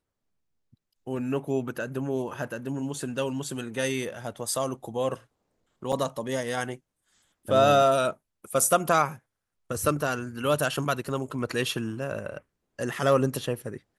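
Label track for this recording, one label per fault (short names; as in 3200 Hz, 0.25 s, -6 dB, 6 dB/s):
5.920000	5.930000	gap 6.1 ms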